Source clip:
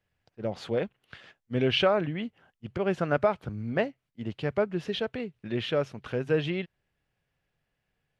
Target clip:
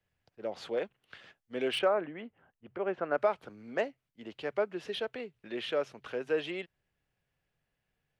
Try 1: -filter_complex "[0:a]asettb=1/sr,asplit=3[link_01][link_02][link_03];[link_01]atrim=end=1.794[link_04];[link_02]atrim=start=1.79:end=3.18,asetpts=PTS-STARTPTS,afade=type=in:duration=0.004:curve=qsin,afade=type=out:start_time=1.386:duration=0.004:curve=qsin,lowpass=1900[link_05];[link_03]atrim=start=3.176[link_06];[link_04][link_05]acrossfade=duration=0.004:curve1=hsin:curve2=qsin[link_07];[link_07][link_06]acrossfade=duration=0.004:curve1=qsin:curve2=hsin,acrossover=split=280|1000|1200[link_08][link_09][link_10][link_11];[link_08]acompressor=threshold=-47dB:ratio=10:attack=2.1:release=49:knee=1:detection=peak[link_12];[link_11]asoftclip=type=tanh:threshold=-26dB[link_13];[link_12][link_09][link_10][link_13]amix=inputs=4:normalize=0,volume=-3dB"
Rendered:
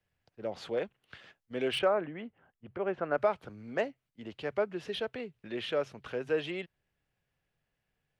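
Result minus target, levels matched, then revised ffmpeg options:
downward compressor: peak gain reduction −10.5 dB
-filter_complex "[0:a]asettb=1/sr,asplit=3[link_01][link_02][link_03];[link_01]atrim=end=1.794[link_04];[link_02]atrim=start=1.79:end=3.18,asetpts=PTS-STARTPTS,afade=type=in:duration=0.004:curve=qsin,afade=type=out:start_time=1.386:duration=0.004:curve=qsin,lowpass=1900[link_05];[link_03]atrim=start=3.176[link_06];[link_04][link_05]acrossfade=duration=0.004:curve1=hsin:curve2=qsin[link_07];[link_07][link_06]acrossfade=duration=0.004:curve1=qsin:curve2=hsin,acrossover=split=280|1000|1200[link_08][link_09][link_10][link_11];[link_08]acompressor=threshold=-58.5dB:ratio=10:attack=2.1:release=49:knee=1:detection=peak[link_12];[link_11]asoftclip=type=tanh:threshold=-26dB[link_13];[link_12][link_09][link_10][link_13]amix=inputs=4:normalize=0,volume=-3dB"

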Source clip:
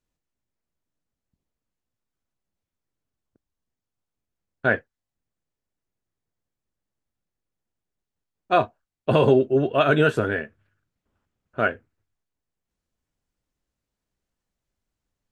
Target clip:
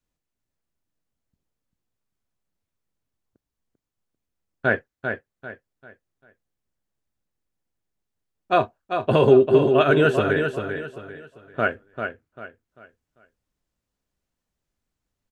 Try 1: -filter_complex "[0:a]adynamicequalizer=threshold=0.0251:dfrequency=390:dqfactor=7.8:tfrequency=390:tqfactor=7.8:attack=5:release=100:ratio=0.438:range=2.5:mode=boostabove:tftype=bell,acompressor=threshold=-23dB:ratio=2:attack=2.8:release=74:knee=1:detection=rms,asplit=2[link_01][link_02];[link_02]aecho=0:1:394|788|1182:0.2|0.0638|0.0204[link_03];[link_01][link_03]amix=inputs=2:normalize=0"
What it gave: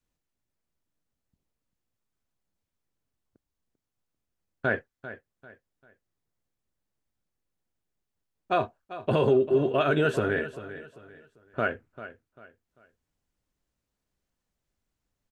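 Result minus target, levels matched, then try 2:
downward compressor: peak gain reduction +9 dB; echo-to-direct −7.5 dB
-filter_complex "[0:a]adynamicequalizer=threshold=0.0251:dfrequency=390:dqfactor=7.8:tfrequency=390:tqfactor=7.8:attack=5:release=100:ratio=0.438:range=2.5:mode=boostabove:tftype=bell,asplit=2[link_01][link_02];[link_02]aecho=0:1:394|788|1182|1576:0.473|0.151|0.0485|0.0155[link_03];[link_01][link_03]amix=inputs=2:normalize=0"

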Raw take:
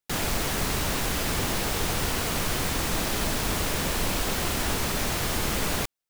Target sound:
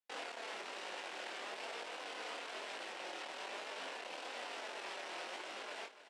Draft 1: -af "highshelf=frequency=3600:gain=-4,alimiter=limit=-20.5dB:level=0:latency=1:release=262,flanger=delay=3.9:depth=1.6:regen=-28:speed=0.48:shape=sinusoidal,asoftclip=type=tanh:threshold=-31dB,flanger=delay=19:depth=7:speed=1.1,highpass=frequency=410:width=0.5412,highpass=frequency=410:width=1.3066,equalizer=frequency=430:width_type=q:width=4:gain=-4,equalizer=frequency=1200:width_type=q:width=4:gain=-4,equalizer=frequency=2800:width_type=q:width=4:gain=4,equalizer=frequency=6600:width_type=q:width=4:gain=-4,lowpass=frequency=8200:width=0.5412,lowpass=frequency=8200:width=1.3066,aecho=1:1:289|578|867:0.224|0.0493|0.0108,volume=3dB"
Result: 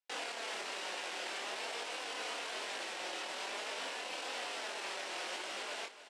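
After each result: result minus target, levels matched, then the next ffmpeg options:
soft clipping: distortion −6 dB; 8,000 Hz band +4.0 dB
-af "highshelf=frequency=3600:gain=-4,alimiter=limit=-20.5dB:level=0:latency=1:release=262,flanger=delay=3.9:depth=1.6:regen=-28:speed=0.48:shape=sinusoidal,asoftclip=type=tanh:threshold=-38dB,flanger=delay=19:depth=7:speed=1.1,highpass=frequency=410:width=0.5412,highpass=frequency=410:width=1.3066,equalizer=frequency=430:width_type=q:width=4:gain=-4,equalizer=frequency=1200:width_type=q:width=4:gain=-4,equalizer=frequency=2800:width_type=q:width=4:gain=4,equalizer=frequency=6600:width_type=q:width=4:gain=-4,lowpass=frequency=8200:width=0.5412,lowpass=frequency=8200:width=1.3066,aecho=1:1:289|578|867:0.224|0.0493|0.0108,volume=3dB"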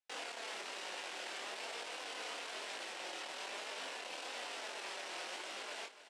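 8,000 Hz band +4.5 dB
-af "highshelf=frequency=3600:gain=-13,alimiter=limit=-20.5dB:level=0:latency=1:release=262,flanger=delay=3.9:depth=1.6:regen=-28:speed=0.48:shape=sinusoidal,asoftclip=type=tanh:threshold=-38dB,flanger=delay=19:depth=7:speed=1.1,highpass=frequency=410:width=0.5412,highpass=frequency=410:width=1.3066,equalizer=frequency=430:width_type=q:width=4:gain=-4,equalizer=frequency=1200:width_type=q:width=4:gain=-4,equalizer=frequency=2800:width_type=q:width=4:gain=4,equalizer=frequency=6600:width_type=q:width=4:gain=-4,lowpass=frequency=8200:width=0.5412,lowpass=frequency=8200:width=1.3066,aecho=1:1:289|578|867:0.224|0.0493|0.0108,volume=3dB"

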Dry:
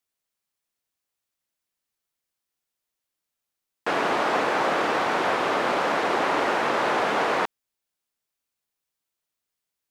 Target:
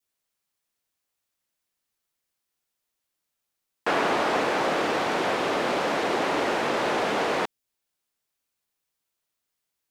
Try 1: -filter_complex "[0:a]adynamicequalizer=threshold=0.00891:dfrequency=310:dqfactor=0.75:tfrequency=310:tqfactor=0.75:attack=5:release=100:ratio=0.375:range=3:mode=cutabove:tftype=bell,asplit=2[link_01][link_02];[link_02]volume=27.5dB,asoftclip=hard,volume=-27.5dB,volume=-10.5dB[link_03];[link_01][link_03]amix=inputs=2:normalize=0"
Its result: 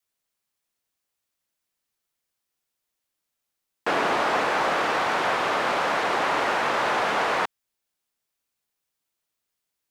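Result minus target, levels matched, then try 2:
250 Hz band −5.5 dB
-filter_complex "[0:a]adynamicequalizer=threshold=0.00891:dfrequency=1200:dqfactor=0.75:tfrequency=1200:tqfactor=0.75:attack=5:release=100:ratio=0.375:range=3:mode=cutabove:tftype=bell,asplit=2[link_01][link_02];[link_02]volume=27.5dB,asoftclip=hard,volume=-27.5dB,volume=-10.5dB[link_03];[link_01][link_03]amix=inputs=2:normalize=0"

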